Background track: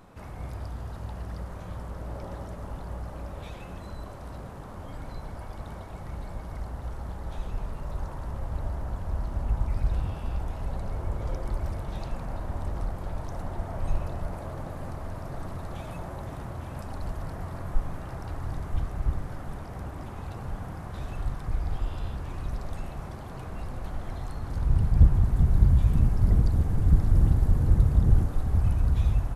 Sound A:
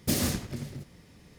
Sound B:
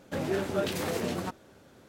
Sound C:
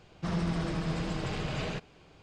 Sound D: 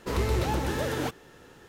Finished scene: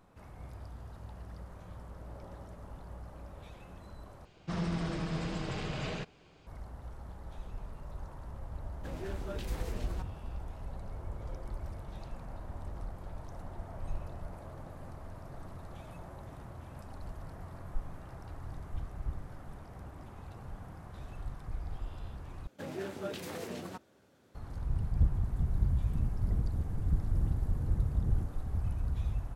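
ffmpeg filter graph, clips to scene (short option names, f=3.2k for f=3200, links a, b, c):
-filter_complex "[2:a]asplit=2[a][b];[0:a]volume=-10dB[c];[b]highpass=57[d];[c]asplit=3[e][f][g];[e]atrim=end=4.254[h];[3:a]atrim=end=2.22,asetpts=PTS-STARTPTS,volume=-3dB[i];[f]atrim=start=6.466:end=22.474[j];[d]atrim=end=1.88,asetpts=PTS-STARTPTS,volume=-9.5dB[k];[g]atrim=start=24.346[l];[a]atrim=end=1.88,asetpts=PTS-STARTPTS,volume=-12.5dB,afade=t=in:d=0.004:c=hsin,afade=t=out:st=1.876:d=0.004:c=hsin,adelay=8720[m];[h][i]acrossfade=d=0.004:c1=hsin:c2=hsin[n];[n][j]acrossfade=d=0.004:c1=hsin:c2=hsin[o];[o][k]acrossfade=d=0.004:c1=hsin:c2=hsin[p];[p][l]acrossfade=d=0.004:c1=hsin:c2=hsin[q];[q][m]amix=inputs=2:normalize=0"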